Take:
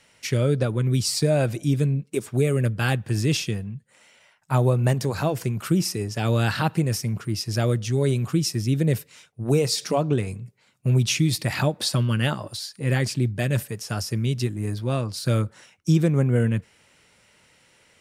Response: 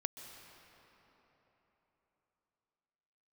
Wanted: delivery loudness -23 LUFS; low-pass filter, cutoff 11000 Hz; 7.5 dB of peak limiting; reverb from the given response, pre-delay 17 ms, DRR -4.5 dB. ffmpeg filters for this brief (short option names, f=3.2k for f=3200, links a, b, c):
-filter_complex "[0:a]lowpass=11k,alimiter=limit=-15dB:level=0:latency=1,asplit=2[a][b];[1:a]atrim=start_sample=2205,adelay=17[c];[b][c]afir=irnorm=-1:irlink=0,volume=5dB[d];[a][d]amix=inputs=2:normalize=0,volume=-3dB"